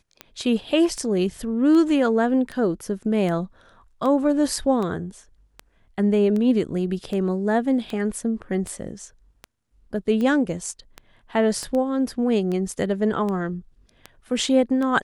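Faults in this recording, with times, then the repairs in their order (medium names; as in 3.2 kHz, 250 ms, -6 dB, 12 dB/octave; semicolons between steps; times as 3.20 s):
tick 78 rpm -18 dBFS
11.63 s: pop -19 dBFS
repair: de-click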